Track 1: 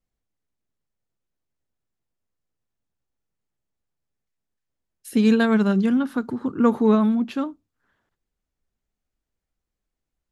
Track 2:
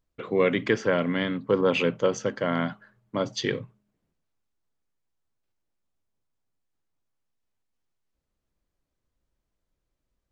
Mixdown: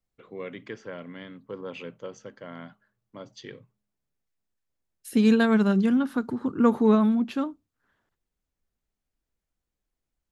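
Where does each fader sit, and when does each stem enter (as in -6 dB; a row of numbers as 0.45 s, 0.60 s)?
-2.0 dB, -15.0 dB; 0.00 s, 0.00 s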